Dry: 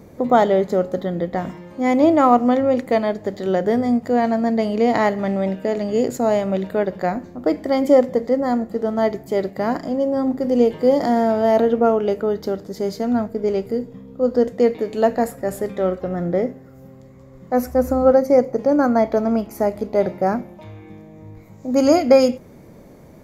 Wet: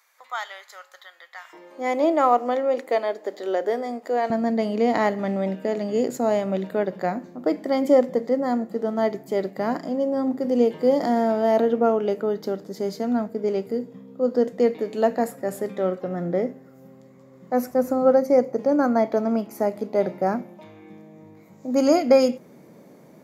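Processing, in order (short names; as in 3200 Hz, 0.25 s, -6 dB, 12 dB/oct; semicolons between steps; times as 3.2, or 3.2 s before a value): HPF 1200 Hz 24 dB/oct, from 1.53 s 340 Hz, from 4.3 s 150 Hz; gain -3.5 dB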